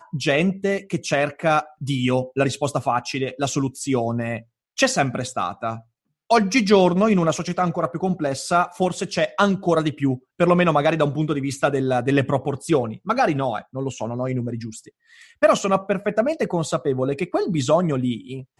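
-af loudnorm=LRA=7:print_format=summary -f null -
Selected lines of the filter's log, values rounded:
Input Integrated:    -21.8 LUFS
Input True Peak:      -3.2 dBTP
Input LRA:             2.7 LU
Input Threshold:     -32.0 LUFS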